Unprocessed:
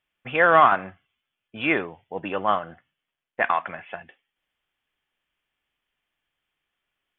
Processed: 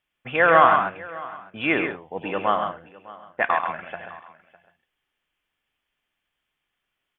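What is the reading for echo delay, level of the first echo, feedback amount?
100 ms, -10.5 dB, no regular repeats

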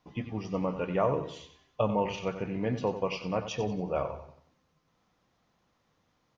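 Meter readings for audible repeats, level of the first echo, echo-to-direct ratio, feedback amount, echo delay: 3, -11.0 dB, -10.5 dB, 39%, 92 ms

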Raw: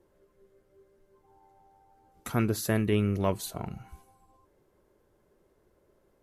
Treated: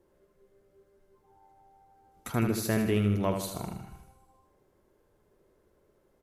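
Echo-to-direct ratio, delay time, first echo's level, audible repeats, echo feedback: -5.0 dB, 78 ms, -6.5 dB, 6, 52%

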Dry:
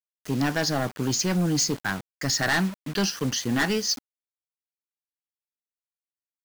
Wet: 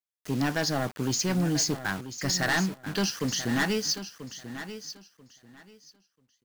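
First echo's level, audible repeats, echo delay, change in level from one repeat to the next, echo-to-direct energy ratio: -12.0 dB, 2, 988 ms, -14.0 dB, -12.0 dB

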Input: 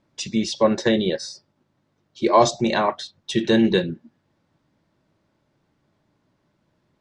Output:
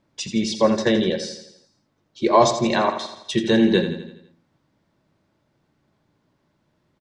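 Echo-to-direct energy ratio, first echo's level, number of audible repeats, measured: -8.0 dB, -9.5 dB, 5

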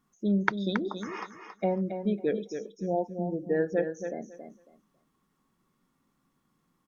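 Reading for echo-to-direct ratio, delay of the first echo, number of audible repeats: -8.0 dB, 275 ms, 2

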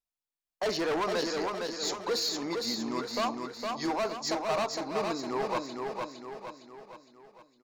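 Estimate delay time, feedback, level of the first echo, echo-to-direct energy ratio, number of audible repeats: 460 ms, 48%, -4.0 dB, -3.0 dB, 5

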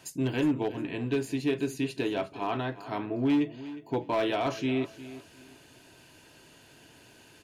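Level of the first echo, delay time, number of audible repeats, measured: -15.5 dB, 359 ms, 2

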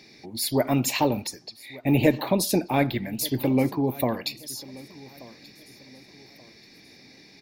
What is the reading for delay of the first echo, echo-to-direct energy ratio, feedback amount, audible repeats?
1181 ms, -20.5 dB, 35%, 2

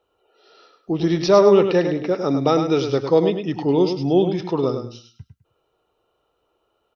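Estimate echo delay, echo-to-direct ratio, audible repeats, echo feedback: 103 ms, -7.5 dB, 3, 22%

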